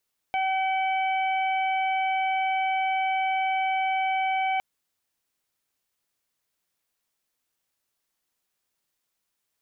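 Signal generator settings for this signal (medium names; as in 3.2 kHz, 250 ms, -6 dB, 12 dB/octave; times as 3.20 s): steady additive tone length 4.26 s, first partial 763 Hz, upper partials -16.5/-6/-17 dB, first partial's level -23.5 dB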